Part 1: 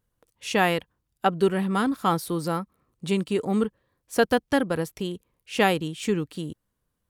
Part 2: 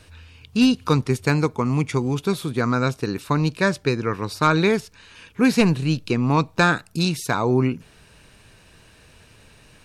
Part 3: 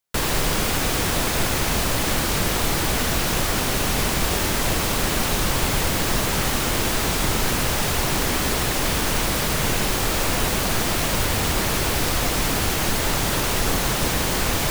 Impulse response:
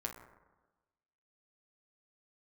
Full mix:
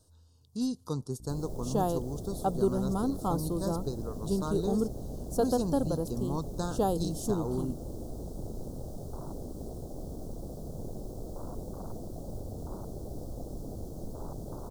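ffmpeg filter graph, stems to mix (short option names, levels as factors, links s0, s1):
-filter_complex "[0:a]aeval=exprs='val(0)+0.00891*(sin(2*PI*60*n/s)+sin(2*PI*2*60*n/s)/2+sin(2*PI*3*60*n/s)/3+sin(2*PI*4*60*n/s)/4+sin(2*PI*5*60*n/s)/5)':c=same,adelay=1200,volume=0.531[s0];[1:a]highshelf=f=3600:g=7,volume=0.188[s1];[2:a]afwtdn=0.0891,adelay=1150,volume=0.188[s2];[s0][s1][s2]amix=inputs=3:normalize=0,asuperstop=centerf=2200:order=4:qfactor=0.52"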